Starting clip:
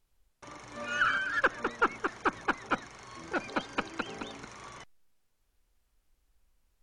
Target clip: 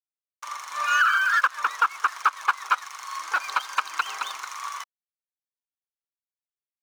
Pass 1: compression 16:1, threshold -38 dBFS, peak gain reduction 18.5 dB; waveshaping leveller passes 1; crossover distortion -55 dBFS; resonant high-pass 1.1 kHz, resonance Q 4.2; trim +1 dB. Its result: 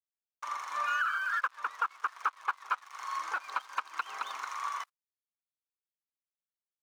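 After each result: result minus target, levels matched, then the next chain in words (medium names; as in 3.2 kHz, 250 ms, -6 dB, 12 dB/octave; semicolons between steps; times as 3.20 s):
compression: peak gain reduction +8 dB; 4 kHz band -2.5 dB
compression 16:1, threshold -29.5 dBFS, peak gain reduction 10.5 dB; waveshaping leveller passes 1; crossover distortion -55 dBFS; resonant high-pass 1.1 kHz, resonance Q 4.2; trim +1 dB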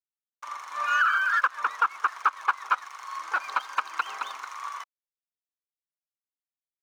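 4 kHz band -4.0 dB
compression 16:1, threshold -29.5 dBFS, peak gain reduction 10.5 dB; waveshaping leveller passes 1; crossover distortion -55 dBFS; resonant high-pass 1.1 kHz, resonance Q 4.2; treble shelf 2.7 kHz +11 dB; trim +1 dB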